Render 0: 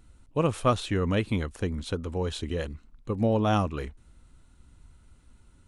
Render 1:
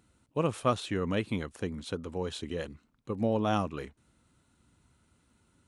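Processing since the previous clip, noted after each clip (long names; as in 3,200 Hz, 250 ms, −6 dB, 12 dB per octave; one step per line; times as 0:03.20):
high-pass filter 120 Hz 12 dB per octave
level −3.5 dB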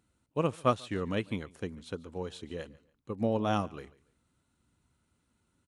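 repeating echo 142 ms, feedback 30%, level −19.5 dB
expander for the loud parts 1.5 to 1, over −39 dBFS
level +1.5 dB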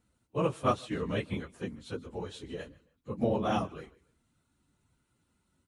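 random phases in long frames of 50 ms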